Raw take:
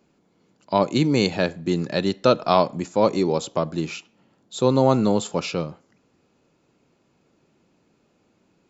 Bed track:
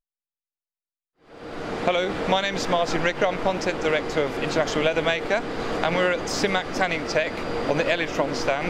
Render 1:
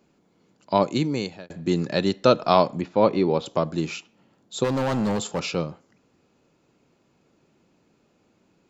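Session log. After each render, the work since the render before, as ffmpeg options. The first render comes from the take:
-filter_complex "[0:a]asettb=1/sr,asplit=3[s0][s1][s2];[s0]atrim=end=2.814[s3];[s1]atrim=start=2.81:end=3.46,asetpts=PTS-STARTPTS,afade=t=in:d=0.004:c=qsin,afade=t=out:st=0.646:d=0.004:c=qsin,lowpass=f=3900:w=0.5412,lowpass=f=3900:w=1.3066[s4];[s2]atrim=start=3.456[s5];[s3][s4]acrossfade=d=0.004:c1=hsin:c2=qsin[s6];[s6][s5]acrossfade=d=0.004:c1=qsin:c2=hsin,asplit=3[s7][s8][s9];[s7]afade=t=out:st=4.63:d=0.02[s10];[s8]asoftclip=type=hard:threshold=0.0944,afade=t=in:st=4.63:d=0.02,afade=t=out:st=5.54:d=0.02[s11];[s9]afade=t=in:st=5.54:d=0.02[s12];[s10][s11][s12]amix=inputs=3:normalize=0,asplit=2[s13][s14];[s13]atrim=end=1.5,asetpts=PTS-STARTPTS,afade=t=out:st=0.74:d=0.76[s15];[s14]atrim=start=1.5,asetpts=PTS-STARTPTS,afade=t=in:d=0.004:c=hsin[s16];[s15][s16]concat=n=2:v=0:a=1"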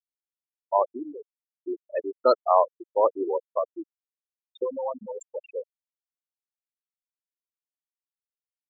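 -af "highpass=460,afftfilt=real='re*gte(hypot(re,im),0.2)':imag='im*gte(hypot(re,im),0.2)':win_size=1024:overlap=0.75"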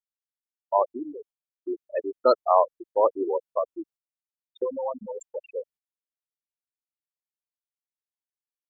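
-af "lowshelf=f=140:g=6.5,agate=range=0.2:threshold=0.00251:ratio=16:detection=peak"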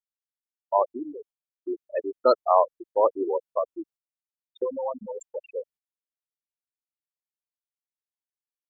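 -af anull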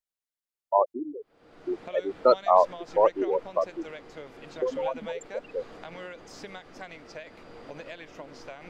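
-filter_complex "[1:a]volume=0.106[s0];[0:a][s0]amix=inputs=2:normalize=0"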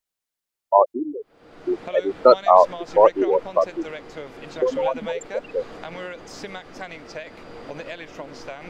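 -af "volume=2.24,alimiter=limit=0.891:level=0:latency=1"

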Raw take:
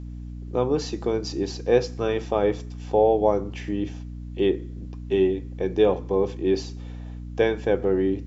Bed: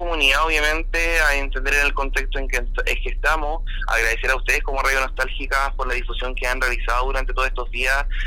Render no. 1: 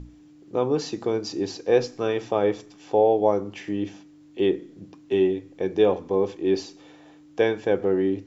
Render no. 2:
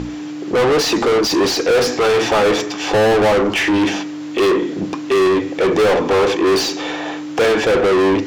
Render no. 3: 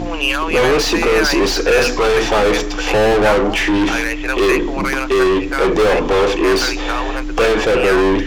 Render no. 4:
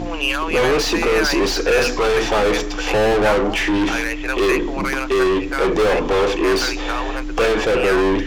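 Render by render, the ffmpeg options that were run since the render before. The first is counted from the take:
-af "bandreject=f=60:t=h:w=6,bandreject=f=120:t=h:w=6,bandreject=f=180:t=h:w=6,bandreject=f=240:t=h:w=6"
-filter_complex "[0:a]asplit=2[s0][s1];[s1]highpass=f=720:p=1,volume=79.4,asoftclip=type=tanh:threshold=0.447[s2];[s0][s2]amix=inputs=2:normalize=0,lowpass=f=3400:p=1,volume=0.501"
-filter_complex "[1:a]volume=0.841[s0];[0:a][s0]amix=inputs=2:normalize=0"
-af "volume=0.708"

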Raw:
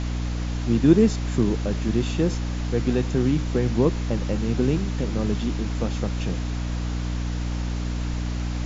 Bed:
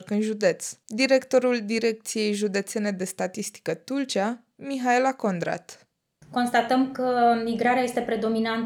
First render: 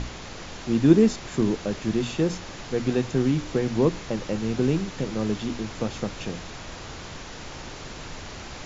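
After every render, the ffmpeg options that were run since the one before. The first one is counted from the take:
-af "bandreject=f=60:t=h:w=6,bandreject=f=120:t=h:w=6,bandreject=f=180:t=h:w=6,bandreject=f=240:t=h:w=6,bandreject=f=300:t=h:w=6"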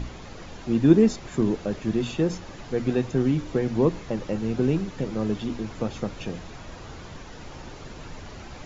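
-af "afftdn=nr=8:nf=-39"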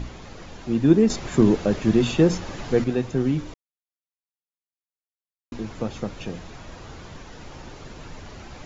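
-filter_complex "[0:a]asplit=5[s0][s1][s2][s3][s4];[s0]atrim=end=1.102[s5];[s1]atrim=start=1.098:end=2.842,asetpts=PTS-STARTPTS,volume=2.11[s6];[s2]atrim=start=2.838:end=3.54,asetpts=PTS-STARTPTS,afade=t=out:st=0.698:d=0.004:c=hsin[s7];[s3]atrim=start=3.54:end=5.52,asetpts=PTS-STARTPTS,volume=0[s8];[s4]atrim=start=5.52,asetpts=PTS-STARTPTS,afade=t=in:d=0.004:c=hsin[s9];[s5][s6]acrossfade=d=0.004:c1=hsin:c2=hsin[s10];[s7][s8][s9]concat=n=3:v=0:a=1[s11];[s10][s11]acrossfade=d=0.004:c1=hsin:c2=hsin"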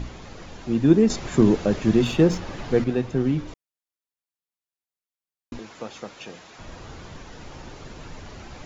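-filter_complex "[0:a]asettb=1/sr,asplit=3[s0][s1][s2];[s0]atrim=end=2.044[s3];[s1]atrim=start=2.04:end=3.48,asetpts=PTS-STARTPTS,afade=t=in:d=0.004:c=qsin,afade=t=out:st=1.436:d=0.004:c=qsin,adynamicsmooth=sensitivity=4.5:basefreq=6500[s4];[s2]atrim=start=3.476[s5];[s3][s4]acrossfade=d=0.004:c1=hsin:c2=qsin[s6];[s6][s5]acrossfade=d=0.004:c1=qsin:c2=hsin,asettb=1/sr,asplit=3[s7][s8][s9];[s7]atrim=end=5.594[s10];[s8]atrim=start=5.59:end=6.59,asetpts=PTS-STARTPTS,afade=t=in:d=0.004:c=qsin,afade=t=out:st=0.996:d=0.004:c=qsin,highpass=f=740:p=1[s11];[s9]atrim=start=6.586[s12];[s10][s11]acrossfade=d=0.004:c1=hsin:c2=qsin[s13];[s13][s12]acrossfade=d=0.004:c1=qsin:c2=hsin"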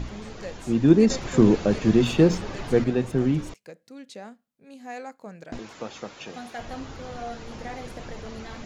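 -filter_complex "[1:a]volume=0.158[s0];[0:a][s0]amix=inputs=2:normalize=0"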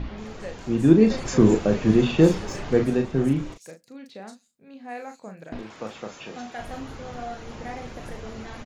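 -filter_complex "[0:a]asplit=2[s0][s1];[s1]adelay=37,volume=0.447[s2];[s0][s2]amix=inputs=2:normalize=0,acrossover=split=4600[s3][s4];[s4]adelay=180[s5];[s3][s5]amix=inputs=2:normalize=0"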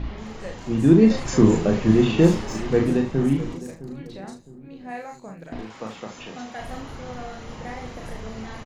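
-filter_complex "[0:a]asplit=2[s0][s1];[s1]adelay=36,volume=0.631[s2];[s0][s2]amix=inputs=2:normalize=0,asplit=2[s3][s4];[s4]adelay=661,lowpass=f=1100:p=1,volume=0.178,asplit=2[s5][s6];[s6]adelay=661,lowpass=f=1100:p=1,volume=0.4,asplit=2[s7][s8];[s8]adelay=661,lowpass=f=1100:p=1,volume=0.4,asplit=2[s9][s10];[s10]adelay=661,lowpass=f=1100:p=1,volume=0.4[s11];[s3][s5][s7][s9][s11]amix=inputs=5:normalize=0"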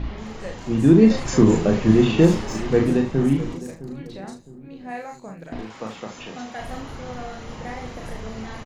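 -af "volume=1.19,alimiter=limit=0.708:level=0:latency=1"

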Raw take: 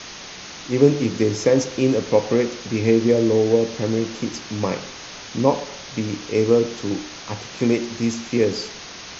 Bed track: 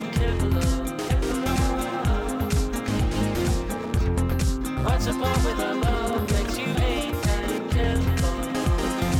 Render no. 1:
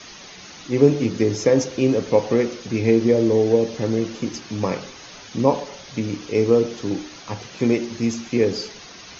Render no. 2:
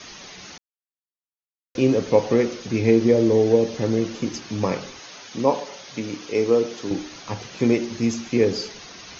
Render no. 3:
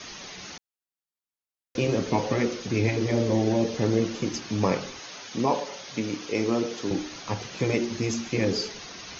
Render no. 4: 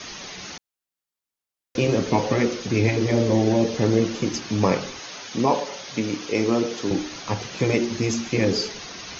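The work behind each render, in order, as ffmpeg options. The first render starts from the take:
-af "afftdn=nr=8:nf=-37"
-filter_complex "[0:a]asettb=1/sr,asplit=3[s0][s1][s2];[s0]atrim=end=4.994[s3];[s1]atrim=start=4.99:end=6.91,asetpts=PTS-STARTPTS,afade=t=in:d=0.004:c=qsin,afade=t=out:st=1.916:d=0.004:c=qsin,highpass=f=320:p=1[s4];[s2]atrim=start=6.906[s5];[s3][s4]acrossfade=d=0.004:c1=hsin:c2=qsin[s6];[s6][s5]acrossfade=d=0.004:c1=qsin:c2=hsin,asplit=3[s7][s8][s9];[s7]atrim=end=0.58,asetpts=PTS-STARTPTS,afade=t=out:st=0.576:d=0.004:c=hsin[s10];[s8]atrim=start=0.58:end=1.75,asetpts=PTS-STARTPTS,volume=0[s11];[s9]atrim=start=1.75,asetpts=PTS-STARTPTS,afade=t=in:d=0.004:c=hsin[s12];[s10][s11][s12]concat=n=3:v=0:a=1"
-af "afftfilt=real='re*lt(hypot(re,im),0.794)':imag='im*lt(hypot(re,im),0.794)':win_size=1024:overlap=0.75"
-af "volume=1.58"

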